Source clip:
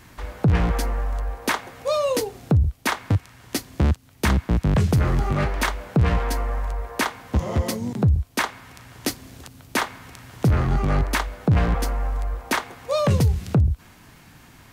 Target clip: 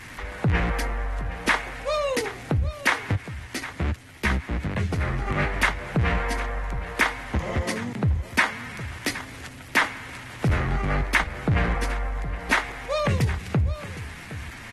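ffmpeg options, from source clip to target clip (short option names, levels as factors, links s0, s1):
-filter_complex "[0:a]aeval=exprs='val(0)+0.5*0.0133*sgn(val(0))':c=same,equalizer=f=2000:t=o:w=0.97:g=10,asettb=1/sr,asplit=3[s0][s1][s2];[s0]atrim=end=3.144[s3];[s1]atrim=start=3.14:end=5.27,asetpts=PTS-STARTPTS,afade=t=in:d=0.004:c=qsin,afade=t=out:st=2.126:d=0.004:c=qsin,flanger=delay=9.1:depth=6.8:regen=-16:speed=1.2:shape=triangular[s4];[s2]atrim=start=5.266[s5];[s3][s4]acrossfade=d=0.004:c1=hsin:c2=qsin[s6];[s6][s5]acrossfade=d=0.004:c1=qsin:c2=hsin,aecho=1:1:765:0.188,volume=0.562" -ar 48000 -c:a aac -b:a 32k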